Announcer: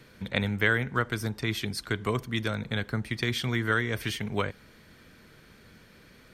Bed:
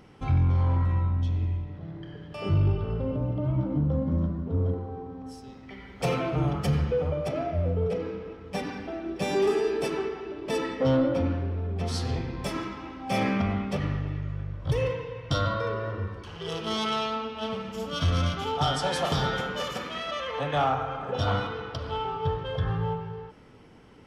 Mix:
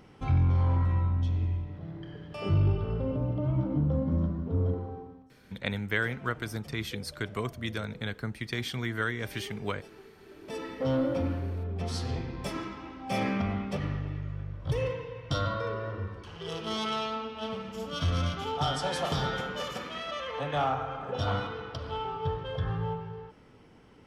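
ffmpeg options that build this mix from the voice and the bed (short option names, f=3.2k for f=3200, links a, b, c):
-filter_complex "[0:a]adelay=5300,volume=-4.5dB[a];[1:a]volume=17dB,afade=t=out:st=4.86:d=0.43:silence=0.0944061,afade=t=in:st=10.14:d=0.96:silence=0.11885[b];[a][b]amix=inputs=2:normalize=0"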